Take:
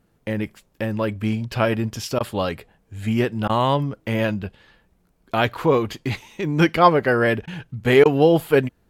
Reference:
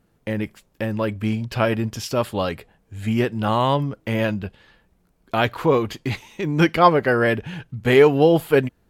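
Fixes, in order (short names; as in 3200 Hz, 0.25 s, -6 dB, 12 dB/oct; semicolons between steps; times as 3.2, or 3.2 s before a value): interpolate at 2.19/3.48/7.46/8.04, 13 ms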